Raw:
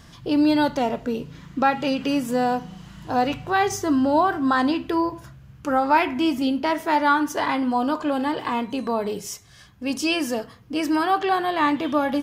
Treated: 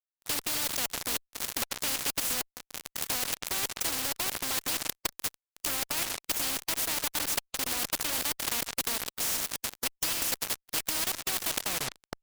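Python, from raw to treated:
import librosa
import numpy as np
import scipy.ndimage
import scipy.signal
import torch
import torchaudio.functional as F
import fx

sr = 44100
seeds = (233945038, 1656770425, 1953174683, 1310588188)

p1 = fx.tape_stop_end(x, sr, length_s=0.8)
p2 = fx.recorder_agc(p1, sr, target_db=-11.5, rise_db_per_s=10.0, max_gain_db=30)
p3 = p2 + fx.echo_stepped(p2, sr, ms=733, hz=240.0, octaves=0.7, feedback_pct=70, wet_db=-8, dry=0)
p4 = fx.level_steps(p3, sr, step_db=21)
p5 = 10.0 ** (-15.5 / 20.0) * np.tanh(p4 / 10.0 ** (-15.5 / 20.0))
p6 = fx.peak_eq(p5, sr, hz=1400.0, db=-13.5, octaves=0.83)
p7 = fx.step_gate(p6, sr, bpm=193, pattern='.xxxx.xxxxx.xxx.', floor_db=-60.0, edge_ms=4.5)
p8 = librosa.effects.preemphasis(p7, coef=0.97, zi=[0.0])
p9 = fx.rev_freeverb(p8, sr, rt60_s=1.6, hf_ratio=0.4, predelay_ms=55, drr_db=18.5)
p10 = fx.fuzz(p9, sr, gain_db=58.0, gate_db=-57.0)
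y = fx.spectral_comp(p10, sr, ratio=4.0)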